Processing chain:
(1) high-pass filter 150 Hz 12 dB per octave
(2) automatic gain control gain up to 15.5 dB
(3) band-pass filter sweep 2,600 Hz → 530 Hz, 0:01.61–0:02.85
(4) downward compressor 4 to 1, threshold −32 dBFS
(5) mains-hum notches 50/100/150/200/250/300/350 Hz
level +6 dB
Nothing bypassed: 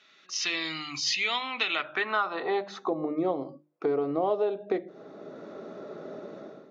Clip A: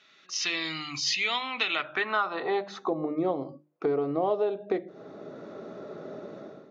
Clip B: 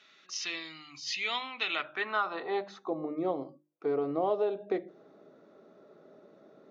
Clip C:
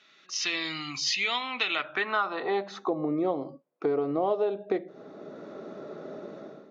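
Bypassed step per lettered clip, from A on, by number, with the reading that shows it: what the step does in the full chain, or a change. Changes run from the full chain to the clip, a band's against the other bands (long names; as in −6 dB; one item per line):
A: 1, 125 Hz band +2.5 dB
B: 2, change in momentary loudness spread −7 LU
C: 5, 125 Hz band +2.0 dB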